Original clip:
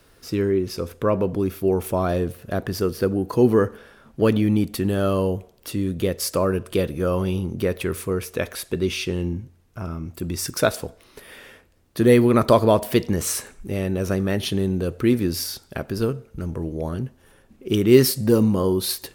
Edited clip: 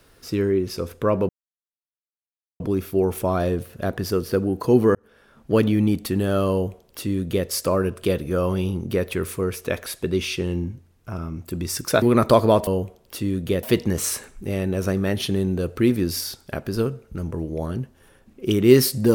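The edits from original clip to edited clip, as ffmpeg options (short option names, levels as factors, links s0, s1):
-filter_complex "[0:a]asplit=6[s0][s1][s2][s3][s4][s5];[s0]atrim=end=1.29,asetpts=PTS-STARTPTS,afade=t=out:st=1.286:d=0.004:c=hsin,apad=pad_dur=1.31[s6];[s1]atrim=start=1.29:end=3.64,asetpts=PTS-STARTPTS,afade=t=in:d=0.004:c=hsin,afade=t=out:st=2.346:d=0.004:c=hsin[s7];[s2]atrim=start=3.64:end=10.712,asetpts=PTS-STARTPTS,afade=t=in:d=0.56[s8];[s3]atrim=start=12.208:end=12.862[s9];[s4]atrim=start=5.198:end=6.162[s10];[s5]atrim=start=12.858[s11];[s6][s7][s8]concat=n=3:v=0:a=1[s12];[s12][s9]acrossfade=d=0.004:c1=hsin:c2=hsin[s13];[s13][s10]acrossfade=d=0.004:c1=hsin:c2=hsin[s14];[s14][s11]acrossfade=d=0.004:c1=hsin:c2=hsin"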